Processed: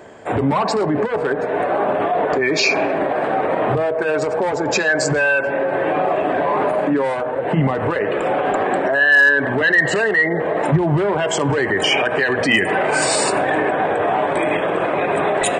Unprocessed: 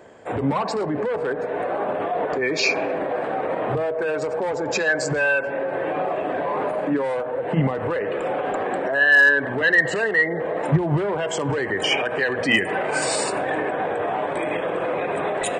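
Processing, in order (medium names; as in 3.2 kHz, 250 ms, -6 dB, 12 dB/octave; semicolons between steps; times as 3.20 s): in parallel at -3 dB: compressor with a negative ratio -24 dBFS; on the sum: band-stop 500 Hz, Q 12; trim +1.5 dB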